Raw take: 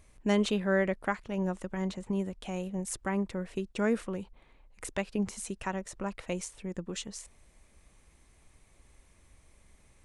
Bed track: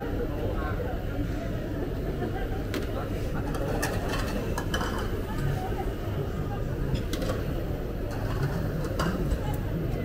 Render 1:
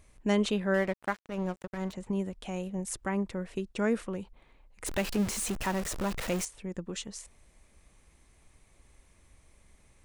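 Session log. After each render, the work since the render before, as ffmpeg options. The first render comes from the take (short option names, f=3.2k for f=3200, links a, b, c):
-filter_complex "[0:a]asettb=1/sr,asplit=3[a][b][c];[a]atrim=end=0.744[d];[b]atrim=start=0.74:end=1.93,asetpts=PTS-STARTPTS,afade=t=in:d=0.004:c=qsin,afade=t=out:st=1.186:d=0.004:c=qsin,aeval=exprs='sgn(val(0))*max(abs(val(0))-0.0075,0)':c=same[e];[c]atrim=start=1.926[f];[d][e]acrossfade=d=0.004:c1=hsin:c2=qsin[g];[g][f]acrossfade=d=0.004:c1=qsin:c2=hsin,asettb=1/sr,asplit=3[h][i][j];[h]atrim=end=4.864[k];[i]atrim=start=4.86:end=6.45,asetpts=PTS-STARTPTS,afade=t=in:d=0.004:c=qsin,afade=t=out:st=1.586:d=0.004:c=qsin,aeval=exprs='val(0)+0.5*0.0266*sgn(val(0))':c=same[l];[j]atrim=start=6.446[m];[k][l]acrossfade=d=0.004:c1=hsin:c2=qsin[n];[n][m]acrossfade=d=0.004:c1=qsin:c2=hsin"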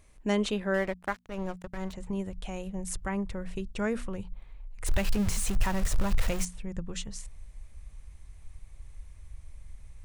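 -af "bandreject=f=60:t=h:w=6,bandreject=f=120:t=h:w=6,bandreject=f=180:t=h:w=6,bandreject=f=240:t=h:w=6,asubboost=boost=8.5:cutoff=97"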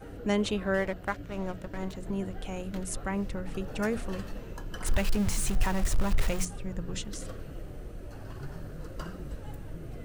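-filter_complex "[1:a]volume=-13dB[a];[0:a][a]amix=inputs=2:normalize=0"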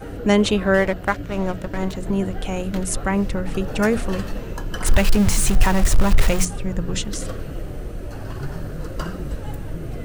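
-af "volume=11dB"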